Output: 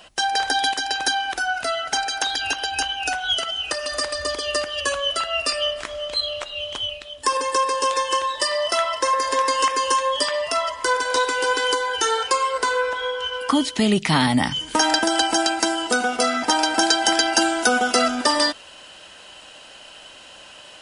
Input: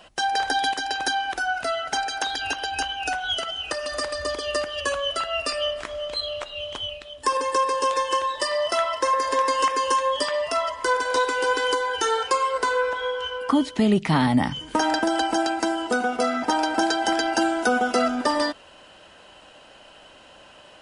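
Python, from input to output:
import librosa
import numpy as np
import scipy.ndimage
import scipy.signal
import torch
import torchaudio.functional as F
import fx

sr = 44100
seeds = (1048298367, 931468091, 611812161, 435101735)

y = fx.high_shelf(x, sr, hz=2100.0, db=fx.steps((0.0, 6.5), (13.32, 12.0)))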